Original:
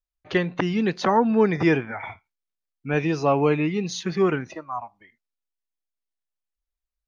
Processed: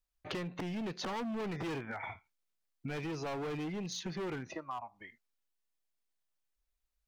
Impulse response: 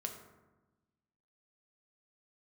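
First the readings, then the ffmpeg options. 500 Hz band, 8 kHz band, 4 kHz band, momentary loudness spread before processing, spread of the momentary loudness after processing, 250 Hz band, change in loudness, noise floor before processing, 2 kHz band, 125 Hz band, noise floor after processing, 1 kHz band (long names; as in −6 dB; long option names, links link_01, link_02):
−18.0 dB, can't be measured, −8.5 dB, 14 LU, 8 LU, −16.0 dB, −16.5 dB, below −85 dBFS, −14.5 dB, −14.5 dB, −84 dBFS, −16.0 dB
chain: -af "asoftclip=type=hard:threshold=-24.5dB,acompressor=threshold=-41dB:ratio=6,volume=2.5dB"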